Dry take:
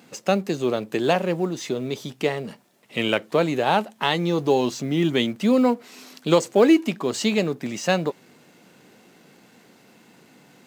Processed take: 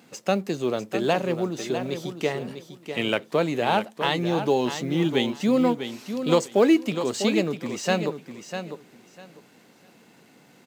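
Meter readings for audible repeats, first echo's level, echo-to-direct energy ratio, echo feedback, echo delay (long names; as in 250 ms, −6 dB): 2, −9.0 dB, −9.0 dB, 20%, 649 ms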